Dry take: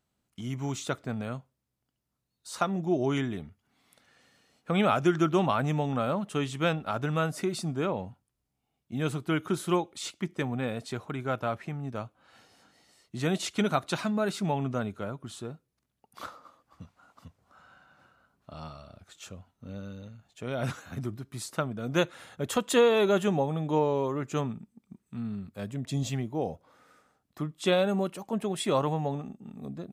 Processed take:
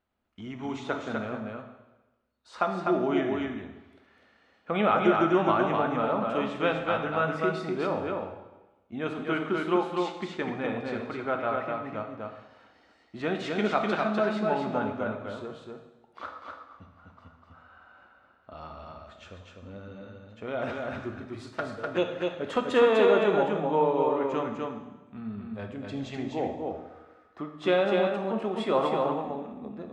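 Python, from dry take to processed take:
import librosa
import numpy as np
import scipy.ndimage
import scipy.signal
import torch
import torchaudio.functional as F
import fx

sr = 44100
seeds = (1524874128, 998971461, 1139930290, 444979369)

p1 = scipy.signal.sosfilt(scipy.signal.butter(2, 2500.0, 'lowpass', fs=sr, output='sos'), x)
p2 = fx.peak_eq(p1, sr, hz=140.0, db=-14.0, octaves=0.94)
p3 = fx.env_flanger(p2, sr, rest_ms=9.7, full_db=-26.0, at=(21.46, 22.22))
p4 = p3 + fx.echo_single(p3, sr, ms=250, db=-3.5, dry=0)
p5 = fx.rev_plate(p4, sr, seeds[0], rt60_s=1.1, hf_ratio=0.95, predelay_ms=0, drr_db=4.5)
y = F.gain(torch.from_numpy(p5), 1.5).numpy()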